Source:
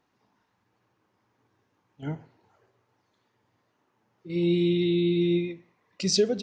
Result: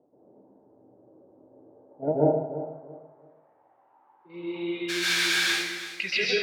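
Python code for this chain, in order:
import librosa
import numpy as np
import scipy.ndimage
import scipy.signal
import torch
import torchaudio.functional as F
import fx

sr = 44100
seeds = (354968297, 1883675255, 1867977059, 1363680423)

p1 = scipy.signal.sosfilt(scipy.signal.butter(2, 5000.0, 'lowpass', fs=sr, output='sos'), x)
p2 = fx.level_steps(p1, sr, step_db=15)
p3 = p1 + F.gain(torch.from_numpy(p2), -3.0).numpy()
p4 = fx.filter_sweep_lowpass(p3, sr, from_hz=600.0, to_hz=2200.0, start_s=3.18, end_s=5.86, q=4.5)
p5 = fx.sample_hold(p4, sr, seeds[0], rate_hz=2000.0, jitter_pct=20, at=(4.88, 5.49), fade=0.02)
p6 = fx.filter_sweep_bandpass(p5, sr, from_hz=310.0, to_hz=3700.0, start_s=1.26, end_s=4.08, q=1.0)
p7 = fx.echo_feedback(p6, sr, ms=336, feedback_pct=27, wet_db=-13)
p8 = fx.rev_plate(p7, sr, seeds[1], rt60_s=0.81, hf_ratio=0.8, predelay_ms=115, drr_db=-6.5)
y = F.gain(torch.from_numpy(p8), 4.0).numpy()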